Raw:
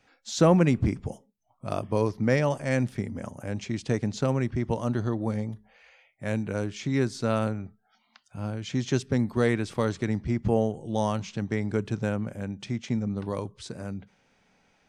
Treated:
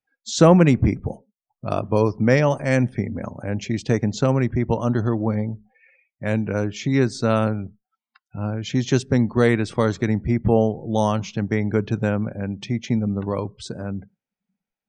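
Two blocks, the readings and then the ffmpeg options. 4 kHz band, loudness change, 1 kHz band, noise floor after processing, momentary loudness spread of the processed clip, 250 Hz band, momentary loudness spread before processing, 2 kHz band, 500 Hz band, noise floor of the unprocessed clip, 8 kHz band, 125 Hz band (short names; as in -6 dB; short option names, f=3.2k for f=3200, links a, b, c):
+6.0 dB, +6.5 dB, +6.5 dB, under -85 dBFS, 13 LU, +6.5 dB, 13 LU, +6.5 dB, +6.5 dB, -69 dBFS, +5.5 dB, +6.5 dB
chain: -af "afftdn=nr=34:nf=-50,volume=6.5dB"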